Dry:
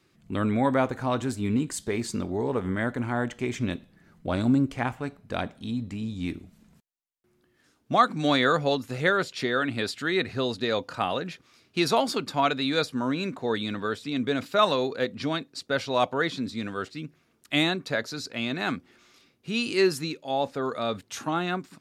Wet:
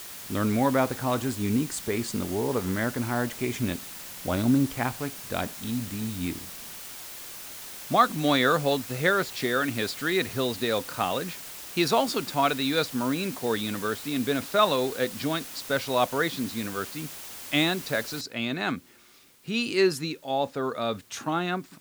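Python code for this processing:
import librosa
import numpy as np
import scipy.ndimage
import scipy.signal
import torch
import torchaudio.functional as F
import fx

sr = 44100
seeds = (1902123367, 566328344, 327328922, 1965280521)

y = fx.noise_floor_step(x, sr, seeds[0], at_s=18.21, before_db=-41, after_db=-59, tilt_db=0.0)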